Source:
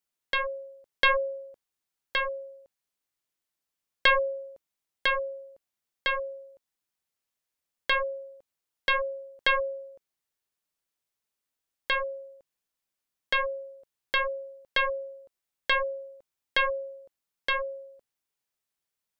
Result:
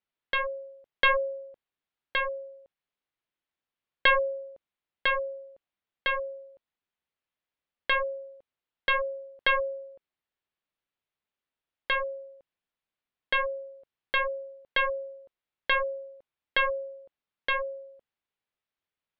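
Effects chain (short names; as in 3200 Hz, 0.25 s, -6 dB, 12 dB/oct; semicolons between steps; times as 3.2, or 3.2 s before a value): LPF 3700 Hz 24 dB/oct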